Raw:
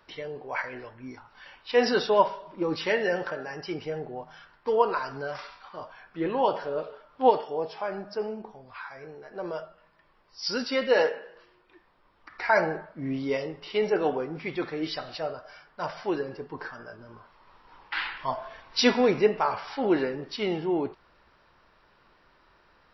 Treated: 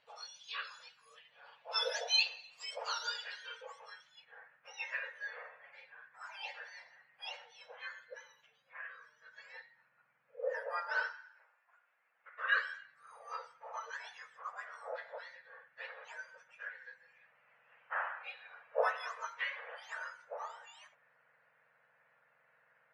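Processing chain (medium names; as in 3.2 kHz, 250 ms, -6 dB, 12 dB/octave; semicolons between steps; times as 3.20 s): spectrum inverted on a logarithmic axis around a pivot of 1.6 kHz; 11.13–12.43 s: high-pass 840 Hz -> 370 Hz 12 dB/octave; low-pass sweep 3.7 kHz -> 1.7 kHz, 3.03–4.28 s; trim -8.5 dB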